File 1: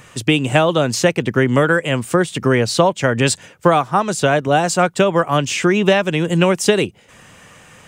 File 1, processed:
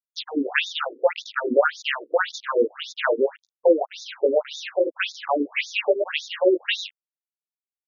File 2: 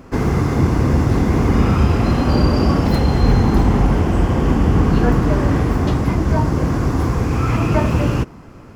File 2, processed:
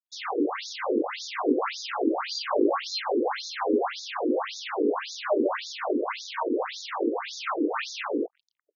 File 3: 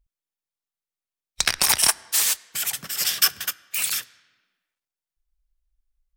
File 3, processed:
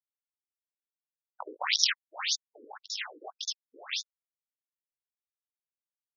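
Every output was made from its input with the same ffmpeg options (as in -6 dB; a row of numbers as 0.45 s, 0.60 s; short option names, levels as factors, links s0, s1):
-af "flanger=delay=19.5:depth=2.1:speed=0.68,acrusher=bits=4:mix=0:aa=0.5,afftfilt=real='re*between(b*sr/1024,360*pow(5000/360,0.5+0.5*sin(2*PI*1.8*pts/sr))/1.41,360*pow(5000/360,0.5+0.5*sin(2*PI*1.8*pts/sr))*1.41)':imag='im*between(b*sr/1024,360*pow(5000/360,0.5+0.5*sin(2*PI*1.8*pts/sr))/1.41,360*pow(5000/360,0.5+0.5*sin(2*PI*1.8*pts/sr))*1.41)':win_size=1024:overlap=0.75,volume=1.58"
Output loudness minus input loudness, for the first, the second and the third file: -7.5 LU, -11.5 LU, -10.0 LU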